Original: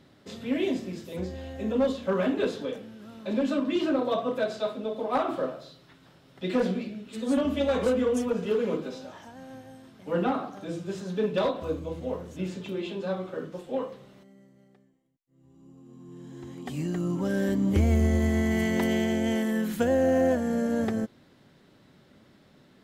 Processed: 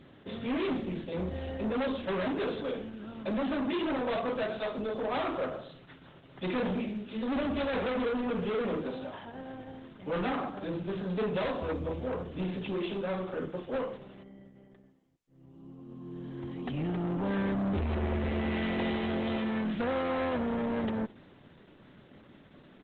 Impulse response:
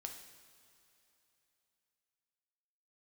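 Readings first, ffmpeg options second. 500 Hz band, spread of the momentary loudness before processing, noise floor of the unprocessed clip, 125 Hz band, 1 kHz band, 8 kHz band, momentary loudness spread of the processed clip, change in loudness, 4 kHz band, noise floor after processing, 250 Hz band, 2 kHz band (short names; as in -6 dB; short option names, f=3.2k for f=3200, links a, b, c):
-5.0 dB, 15 LU, -59 dBFS, -5.0 dB, -1.5 dB, under -30 dB, 12 LU, -5.0 dB, -2.5 dB, -57 dBFS, -4.5 dB, -1.5 dB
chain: -af "acontrast=26,aresample=8000,asoftclip=type=tanh:threshold=-26.5dB,aresample=44100,aecho=1:1:66|132:0.0794|0.0191,volume=-1.5dB" -ar 48000 -c:a libopus -b:a 12k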